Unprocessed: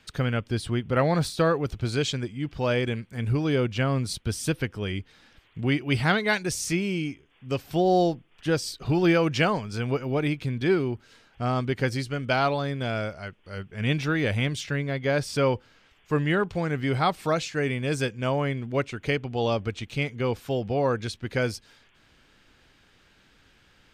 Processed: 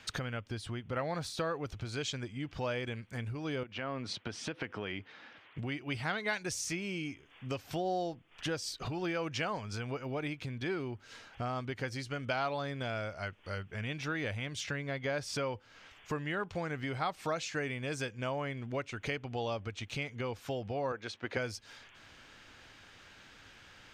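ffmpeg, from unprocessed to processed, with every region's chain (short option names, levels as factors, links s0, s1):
-filter_complex "[0:a]asettb=1/sr,asplit=3[s0][s1][s2];[s0]atrim=end=3.634[s3];[s1]atrim=start=3.63:end=5.58,asetpts=PTS-STARTPTS,afade=t=in:d=0.004:c=qsin,afade=t=out:st=1.946:d=0.004:c=qsin,highpass=200,lowpass=3000,acompressor=threshold=0.0224:ratio=4:attack=3.2:release=140:knee=1:detection=peak[s4];[s2]atrim=start=5.576[s5];[s3][s4]acrossfade=d=0.004:c1=hsin:c2=qsin[s6];[s6][s5]acrossfade=d=0.004:c1=qsin:c2=hsin,asettb=1/sr,asplit=3[s7][s8][s9];[s7]atrim=end=20.924[s10];[s8]atrim=start=20.92:end=21.37,asetpts=PTS-STARTPTS,afade=t=in:d=0.004:c=qsin,afade=t=out:st=0.446:d=0.004:c=qsin,highpass=500,aemphasis=mode=reproduction:type=riaa[s11];[s9]atrim=start=21.366[s12];[s10][s11]acrossfade=d=0.004:c1=hsin:c2=qsin[s13];[s13][s12]acrossfade=d=0.004:c1=qsin:c2=hsin,equalizer=f=100:t=o:w=0.67:g=7,equalizer=f=400:t=o:w=0.67:g=-4,equalizer=f=6300:t=o:w=0.67:g=6,acompressor=threshold=0.0158:ratio=6,bass=f=250:g=-9,treble=f=4000:g=-6,volume=1.88"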